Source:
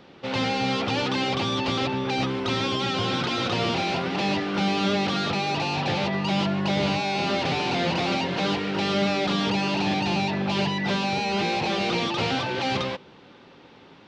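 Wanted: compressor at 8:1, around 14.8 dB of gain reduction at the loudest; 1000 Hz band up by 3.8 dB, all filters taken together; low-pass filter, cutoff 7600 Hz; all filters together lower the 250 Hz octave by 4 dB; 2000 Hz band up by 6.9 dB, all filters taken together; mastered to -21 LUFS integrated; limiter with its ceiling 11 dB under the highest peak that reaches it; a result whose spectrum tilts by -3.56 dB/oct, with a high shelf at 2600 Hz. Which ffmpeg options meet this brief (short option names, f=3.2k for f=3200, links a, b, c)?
-af "lowpass=7.6k,equalizer=f=250:t=o:g=-6,equalizer=f=1k:t=o:g=3.5,equalizer=f=2k:t=o:g=5,highshelf=f=2.6k:g=6,acompressor=threshold=-35dB:ratio=8,volume=21.5dB,alimiter=limit=-14dB:level=0:latency=1"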